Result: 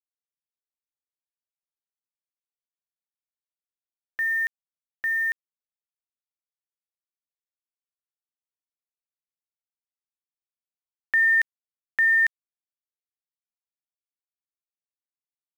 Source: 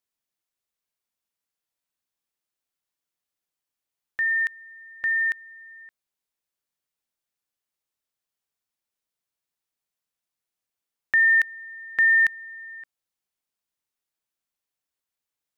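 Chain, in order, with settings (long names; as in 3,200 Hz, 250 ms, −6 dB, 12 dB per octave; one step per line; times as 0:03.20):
low-shelf EQ 220 Hz −6 dB
centre clipping without the shift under −35.5 dBFS
level −1.5 dB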